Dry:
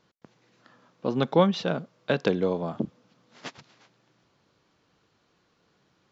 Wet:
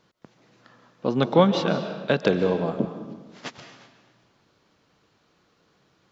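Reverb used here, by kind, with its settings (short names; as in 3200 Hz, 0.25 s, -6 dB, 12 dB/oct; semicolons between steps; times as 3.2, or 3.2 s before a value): digital reverb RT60 1.3 s, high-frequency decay 0.85×, pre-delay 0.105 s, DRR 8 dB; gain +3 dB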